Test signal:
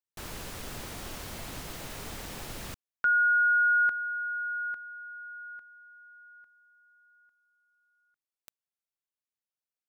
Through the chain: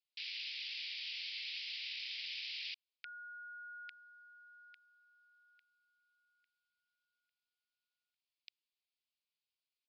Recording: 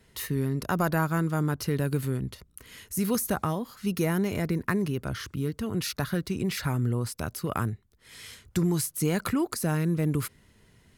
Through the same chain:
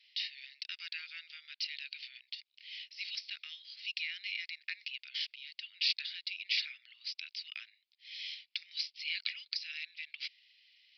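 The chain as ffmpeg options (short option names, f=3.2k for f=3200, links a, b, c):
-af "asuperpass=centerf=4300:order=12:qfactor=0.77,aresample=11025,aresample=44100,volume=6dB"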